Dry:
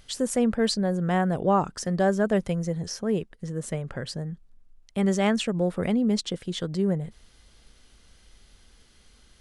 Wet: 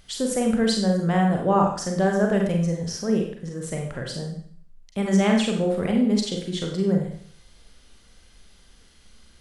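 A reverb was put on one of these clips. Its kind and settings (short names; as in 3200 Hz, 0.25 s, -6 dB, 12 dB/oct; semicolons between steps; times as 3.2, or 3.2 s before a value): Schroeder reverb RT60 0.56 s, combs from 32 ms, DRR 1 dB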